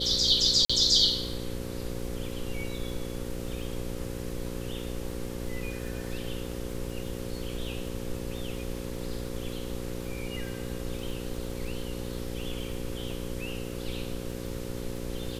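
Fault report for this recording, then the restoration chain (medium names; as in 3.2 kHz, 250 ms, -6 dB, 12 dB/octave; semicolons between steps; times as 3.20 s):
buzz 60 Hz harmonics 9 -37 dBFS
crackle 26 per s -38 dBFS
0.65–0.69 s: dropout 45 ms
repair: de-click; de-hum 60 Hz, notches 9; interpolate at 0.65 s, 45 ms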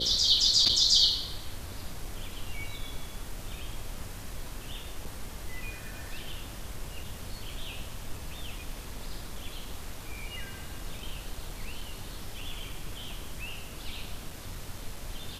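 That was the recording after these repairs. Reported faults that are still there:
nothing left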